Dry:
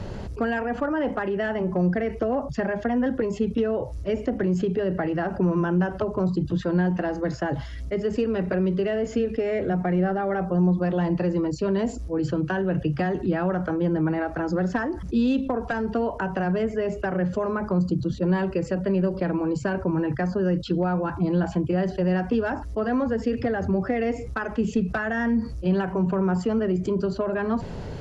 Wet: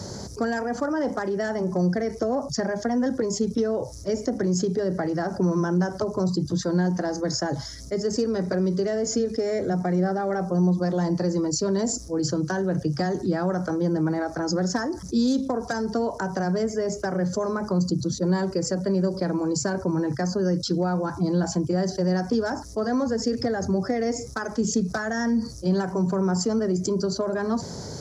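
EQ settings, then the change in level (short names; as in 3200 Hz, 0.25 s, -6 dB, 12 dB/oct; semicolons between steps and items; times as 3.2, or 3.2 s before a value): HPF 100 Hz 12 dB/oct; resonant high shelf 4000 Hz +12 dB, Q 3; notch 2700 Hz, Q 6.7; 0.0 dB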